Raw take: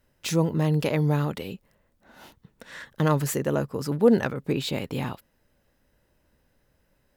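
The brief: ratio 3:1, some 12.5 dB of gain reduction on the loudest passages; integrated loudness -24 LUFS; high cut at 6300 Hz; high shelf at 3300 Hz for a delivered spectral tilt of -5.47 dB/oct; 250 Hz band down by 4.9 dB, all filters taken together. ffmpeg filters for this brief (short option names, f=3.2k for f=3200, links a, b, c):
-af "lowpass=6.3k,equalizer=f=250:t=o:g=-7.5,highshelf=f=3.3k:g=-5,acompressor=threshold=-33dB:ratio=3,volume=12.5dB"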